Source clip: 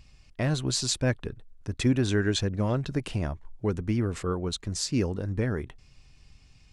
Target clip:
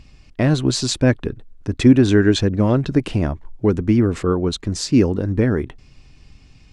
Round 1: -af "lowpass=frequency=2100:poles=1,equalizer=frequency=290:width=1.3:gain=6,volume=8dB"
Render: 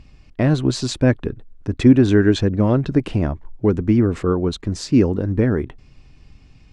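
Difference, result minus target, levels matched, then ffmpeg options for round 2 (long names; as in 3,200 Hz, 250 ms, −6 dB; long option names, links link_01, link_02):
4,000 Hz band −4.5 dB
-af "lowpass=frequency=5000:poles=1,equalizer=frequency=290:width=1.3:gain=6,volume=8dB"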